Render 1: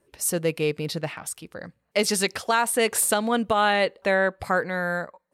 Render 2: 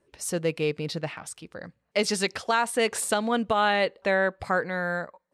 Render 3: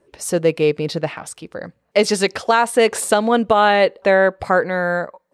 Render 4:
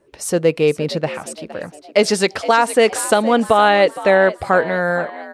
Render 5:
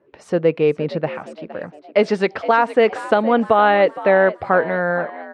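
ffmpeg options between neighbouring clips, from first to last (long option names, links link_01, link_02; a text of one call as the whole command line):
ffmpeg -i in.wav -af "lowpass=7600,volume=-2dB" out.wav
ffmpeg -i in.wav -af "equalizer=frequency=500:width_type=o:width=2.3:gain=5.5,volume=5.5dB" out.wav
ffmpeg -i in.wav -filter_complex "[0:a]asplit=5[link_01][link_02][link_03][link_04][link_05];[link_02]adelay=465,afreqshift=71,volume=-15.5dB[link_06];[link_03]adelay=930,afreqshift=142,volume=-22.2dB[link_07];[link_04]adelay=1395,afreqshift=213,volume=-29dB[link_08];[link_05]adelay=1860,afreqshift=284,volume=-35.7dB[link_09];[link_01][link_06][link_07][link_08][link_09]amix=inputs=5:normalize=0,volume=1dB" out.wav
ffmpeg -i in.wav -af "highpass=110,lowpass=2300,volume=-1dB" out.wav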